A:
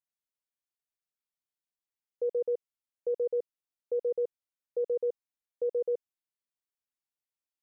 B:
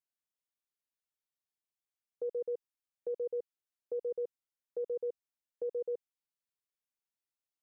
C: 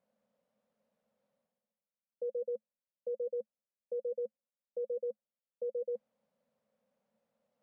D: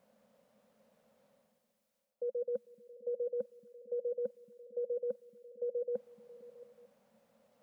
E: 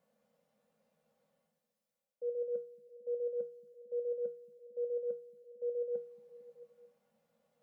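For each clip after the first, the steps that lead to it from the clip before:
dynamic bell 620 Hz, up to -4 dB, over -42 dBFS, Q 1.9; trim -4 dB
reverse; upward compressor, threshold -44 dBFS; reverse; two resonant band-passes 340 Hz, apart 1.3 oct; trim +6 dB
reverse; compression 6:1, threshold -47 dBFS, peak gain reduction 12.5 dB; reverse; repeats whose band climbs or falls 224 ms, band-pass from 170 Hz, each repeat 0.7 oct, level -11 dB; trim +12 dB
feedback comb 160 Hz, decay 0.36 s, harmonics odd, mix 80%; trim +4 dB

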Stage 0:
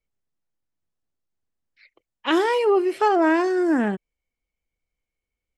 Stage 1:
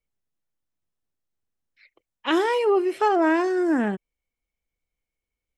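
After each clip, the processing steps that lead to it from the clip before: band-stop 4.6 kHz, Q 16; trim -1.5 dB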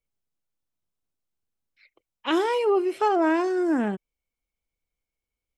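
peaking EQ 1.8 kHz -6 dB 0.22 oct; trim -1.5 dB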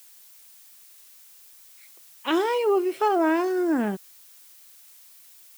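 added noise blue -51 dBFS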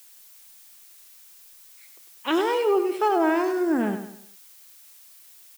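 feedback delay 99 ms, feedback 39%, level -9 dB

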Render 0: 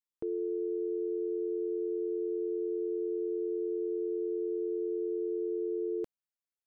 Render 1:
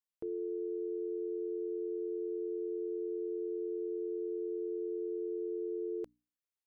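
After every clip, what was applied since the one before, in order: hum notches 60/120/180/240/300 Hz; trim -4 dB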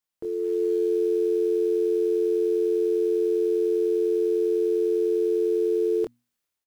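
level rider gain up to 6.5 dB; in parallel at -8.5 dB: short-mantissa float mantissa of 2-bit; on the sum: doubling 25 ms -5 dB; trim +2.5 dB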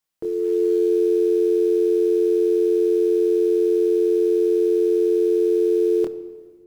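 simulated room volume 2300 m³, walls mixed, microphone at 0.61 m; trim +4.5 dB

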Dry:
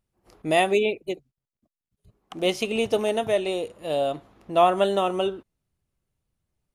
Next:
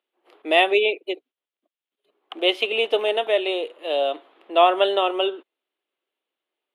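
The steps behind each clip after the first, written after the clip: steep high-pass 320 Hz 36 dB/octave; resonant high shelf 4.4 kHz -10.5 dB, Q 3; trim +2 dB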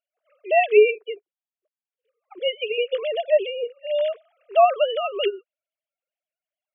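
formants replaced by sine waves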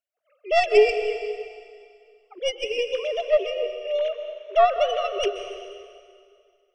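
tracing distortion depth 0.083 ms; plate-style reverb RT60 2.2 s, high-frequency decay 0.95×, pre-delay 115 ms, DRR 7.5 dB; trim -2 dB

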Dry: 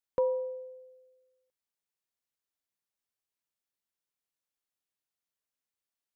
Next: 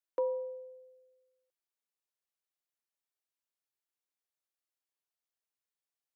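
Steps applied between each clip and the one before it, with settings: elliptic high-pass 300 Hz; trim -3.5 dB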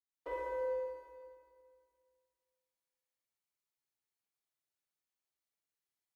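waveshaping leveller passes 1; reverberation RT60 2.1 s, pre-delay 77 ms; trim +8.5 dB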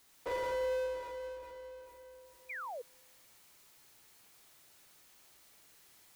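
power-law waveshaper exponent 0.5; painted sound fall, 2.49–2.82 s, 450–2500 Hz -42 dBFS

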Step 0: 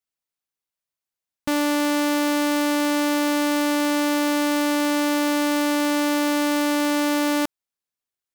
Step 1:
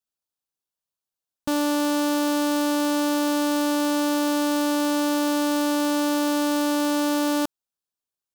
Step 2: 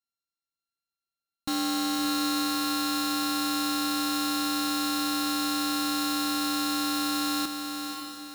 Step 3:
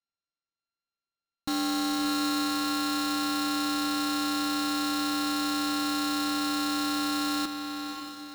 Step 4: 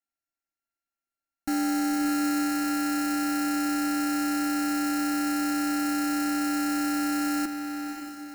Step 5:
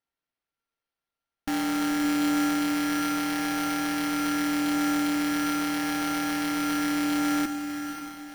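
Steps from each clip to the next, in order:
peaking EQ 2.1 kHz -12.5 dB 0.41 oct; trim -1 dB
sorted samples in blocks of 32 samples; graphic EQ with 31 bands 315 Hz +3 dB, 500 Hz -10 dB, 1 kHz -7 dB, 1.6 kHz -7 dB, 2.5 kHz -11 dB, 4 kHz +8 dB; echo that smears into a reverb 563 ms, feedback 43%, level -6 dB; trim -5 dB
median filter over 5 samples
static phaser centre 720 Hz, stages 8; trim +3.5 dB
phaser 0.41 Hz, delay 1.4 ms, feedback 27%; on a send at -13.5 dB: reverberation, pre-delay 5 ms; on the sum: careless resampling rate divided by 6×, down none, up hold

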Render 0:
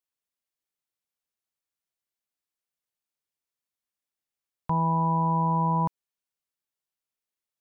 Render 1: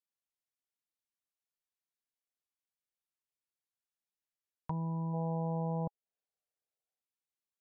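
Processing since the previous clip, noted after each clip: time-frequency box 5.14–7.01 s, 400–830 Hz +11 dB; low-pass that closes with the level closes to 460 Hz, closed at -25.5 dBFS; trim -8.5 dB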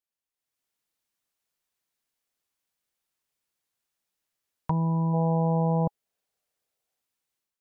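level rider gain up to 10.5 dB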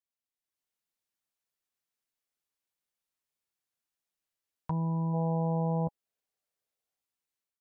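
doubling 12 ms -12 dB; trim -7 dB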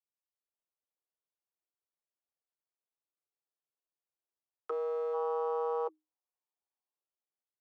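local Wiener filter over 25 samples; frequency shift +310 Hz; Chebyshev shaper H 3 -43 dB, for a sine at -20 dBFS; trim -3.5 dB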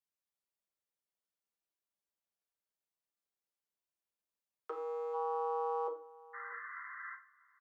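painted sound noise, 6.33–7.15 s, 1–2.1 kHz -45 dBFS; echo from a far wall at 110 m, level -20 dB; reverberation RT60 0.40 s, pre-delay 5 ms, DRR 1.5 dB; trim -3.5 dB

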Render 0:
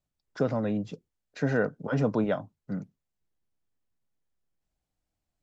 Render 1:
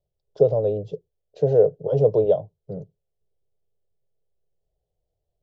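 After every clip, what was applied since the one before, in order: FFT filter 120 Hz 0 dB, 170 Hz -3 dB, 240 Hz -24 dB, 420 Hz +8 dB, 630 Hz +3 dB, 1.5 kHz -29 dB, 2.2 kHz -27 dB, 3.1 kHz -9 dB, 7 kHz -16 dB; trim +6 dB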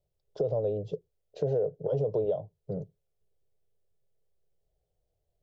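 peak limiter -12.5 dBFS, peak gain reduction 8 dB; compression 2:1, threshold -31 dBFS, peak gain reduction 8.5 dB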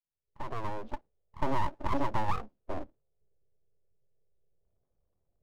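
fade-in on the opening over 1.15 s; level-controlled noise filter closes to 570 Hz, open at -27 dBFS; full-wave rectifier; trim +2 dB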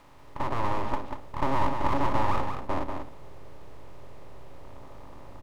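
spectral levelling over time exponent 0.4; delay 190 ms -6 dB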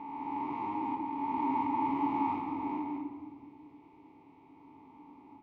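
reverse spectral sustain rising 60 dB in 2.58 s; vowel filter u; simulated room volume 2800 m³, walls mixed, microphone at 1.6 m

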